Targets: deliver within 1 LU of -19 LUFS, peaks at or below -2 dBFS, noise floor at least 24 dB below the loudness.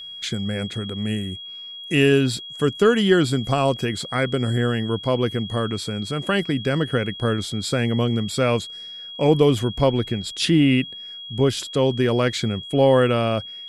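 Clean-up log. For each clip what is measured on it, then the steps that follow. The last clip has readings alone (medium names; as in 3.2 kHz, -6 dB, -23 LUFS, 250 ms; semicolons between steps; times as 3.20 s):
steady tone 3.3 kHz; tone level -34 dBFS; loudness -21.5 LUFS; peak level -5.0 dBFS; loudness target -19.0 LUFS
-> band-stop 3.3 kHz, Q 30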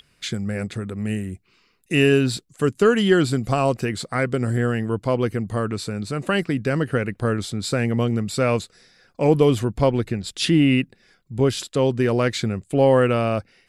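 steady tone not found; loudness -21.5 LUFS; peak level -5.5 dBFS; loudness target -19.0 LUFS
-> trim +2.5 dB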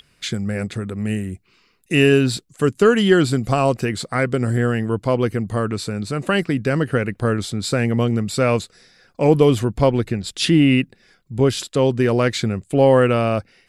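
loudness -19.0 LUFS; peak level -3.0 dBFS; noise floor -60 dBFS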